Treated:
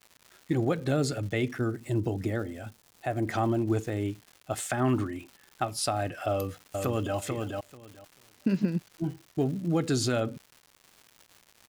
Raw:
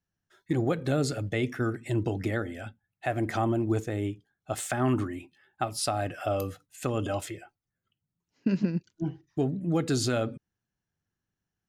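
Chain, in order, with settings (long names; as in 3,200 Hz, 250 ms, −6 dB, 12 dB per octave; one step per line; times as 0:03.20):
surface crackle 280 per second −41 dBFS
0:01.58–0:03.26: parametric band 2,200 Hz −5.5 dB 2.2 octaves
0:06.30–0:07.16: delay throw 440 ms, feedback 15%, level −4 dB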